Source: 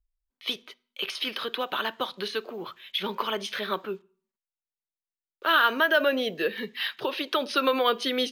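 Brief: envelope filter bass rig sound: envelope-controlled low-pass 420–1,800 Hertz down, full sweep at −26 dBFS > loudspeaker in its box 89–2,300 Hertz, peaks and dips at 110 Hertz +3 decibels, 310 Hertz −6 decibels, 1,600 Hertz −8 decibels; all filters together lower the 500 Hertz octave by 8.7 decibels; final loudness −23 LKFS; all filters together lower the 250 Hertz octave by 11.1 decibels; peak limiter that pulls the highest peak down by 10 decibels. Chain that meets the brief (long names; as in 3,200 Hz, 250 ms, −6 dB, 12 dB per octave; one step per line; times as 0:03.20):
parametric band 250 Hz −8 dB
parametric band 500 Hz −8 dB
brickwall limiter −19 dBFS
envelope-controlled low-pass 420–1,800 Hz down, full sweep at −26 dBFS
loudspeaker in its box 89–2,300 Hz, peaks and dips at 110 Hz +3 dB, 310 Hz −6 dB, 1,600 Hz −8 dB
level +12 dB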